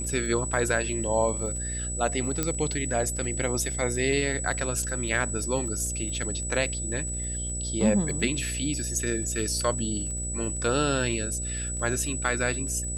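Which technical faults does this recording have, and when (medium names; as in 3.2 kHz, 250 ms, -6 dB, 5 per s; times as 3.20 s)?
buzz 60 Hz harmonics 11 -34 dBFS
crackle 37 per s -36 dBFS
whine 7.9 kHz -32 dBFS
2.43 s: pop -10 dBFS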